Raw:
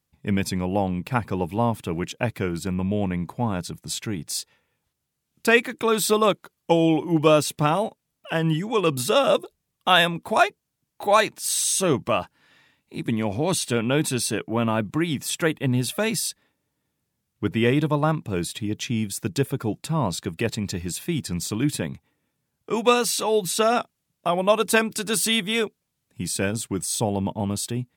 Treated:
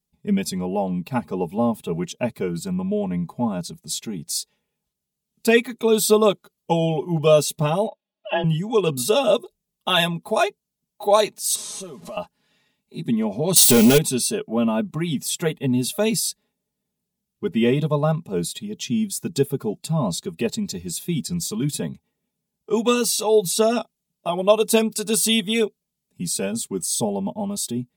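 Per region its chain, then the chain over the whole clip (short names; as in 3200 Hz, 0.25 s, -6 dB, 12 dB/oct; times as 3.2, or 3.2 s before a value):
7.87–8.44 comb 3.7 ms, depth 81% + frequency shift +25 Hz + speaker cabinet 200–3700 Hz, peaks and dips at 260 Hz -10 dB, 660 Hz +7 dB, 3300 Hz +4 dB
11.55–12.17 delta modulation 64 kbps, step -32.5 dBFS + HPF 110 Hz + compressor 8:1, threshold -31 dBFS
13.56–13.98 switching spikes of -21 dBFS + sample leveller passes 3
whole clip: bell 1500 Hz -10 dB 1.6 oct; comb 4.8 ms, depth 92%; spectral noise reduction 6 dB; gain +1 dB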